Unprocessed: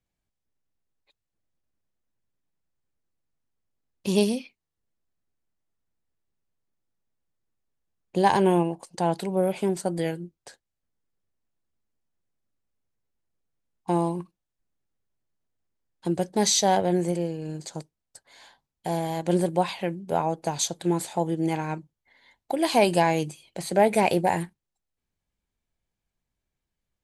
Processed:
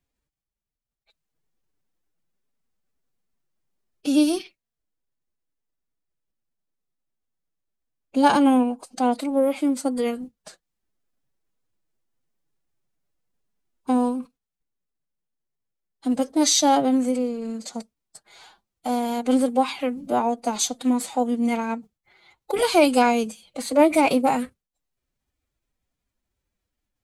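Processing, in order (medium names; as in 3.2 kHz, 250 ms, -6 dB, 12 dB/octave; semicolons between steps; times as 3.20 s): formant-preserving pitch shift +6.5 st; trim +3.5 dB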